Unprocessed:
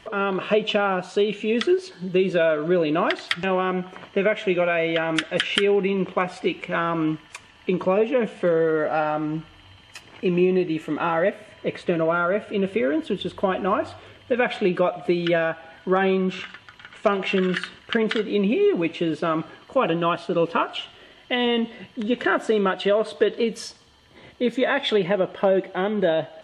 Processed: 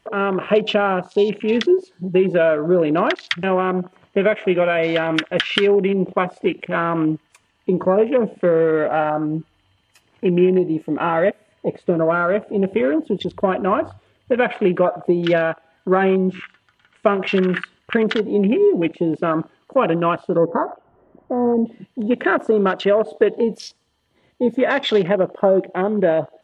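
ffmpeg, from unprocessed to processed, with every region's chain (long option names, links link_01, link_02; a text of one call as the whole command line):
ffmpeg -i in.wav -filter_complex "[0:a]asettb=1/sr,asplit=3[link_01][link_02][link_03];[link_01]atrim=end=20.374[link_04];[link_02]atrim=start=20.37:end=21.66,asetpts=PTS-STARTPTS,afade=type=in:duration=0.004:curve=qsin,afade=type=out:start_time=1.286:duration=0.004:curve=qsin,aeval=exprs='val(0)+0.5*0.0168*sgn(val(0))':channel_layout=same,lowpass=frequency=1100:width=0.5412,lowpass=frequency=1100:width=1.3066[link_05];[link_03]atrim=start=21.656[link_06];[link_04][link_05]acrossfade=duration=0.004:curve1=hsin:curve2=qsin[link_07];[link_07][link_06]acrossfade=duration=0.004:curve1=qsin:curve2=hsin,aemphasis=mode=production:type=75fm,afwtdn=0.0316,highshelf=frequency=2200:gain=-11,volume=5.5dB" out.wav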